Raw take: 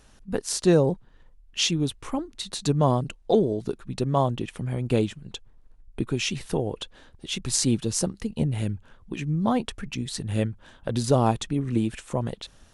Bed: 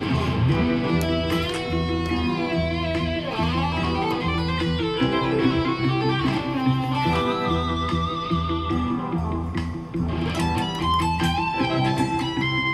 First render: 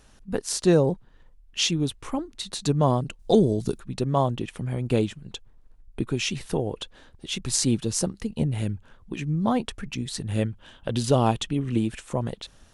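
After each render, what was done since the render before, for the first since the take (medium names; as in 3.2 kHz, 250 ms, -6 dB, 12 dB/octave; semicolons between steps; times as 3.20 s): 3.19–3.80 s: tone controls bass +7 dB, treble +12 dB; 10.48–11.79 s: peaking EQ 3 kHz +8.5 dB 0.41 oct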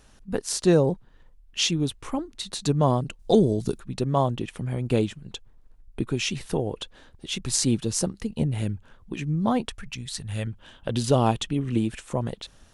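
9.69–10.47 s: peaking EQ 320 Hz -12.5 dB 1.8 oct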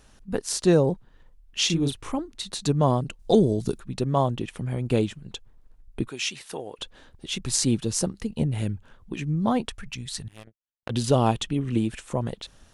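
1.66–2.12 s: doubling 36 ms -4.5 dB; 6.08–6.79 s: high-pass 1 kHz 6 dB/octave; 10.28–10.90 s: power-law waveshaper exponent 3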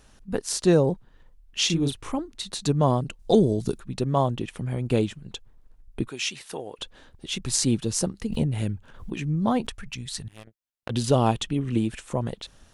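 8.27–9.72 s: swell ahead of each attack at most 88 dB/s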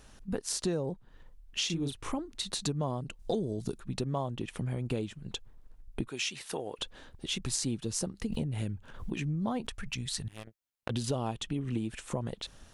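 compression 4:1, threshold -31 dBFS, peak gain reduction 15 dB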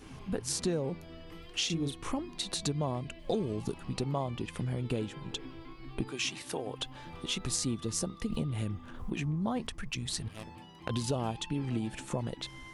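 add bed -26.5 dB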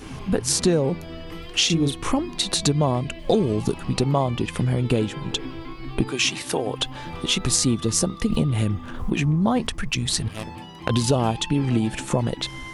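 trim +12 dB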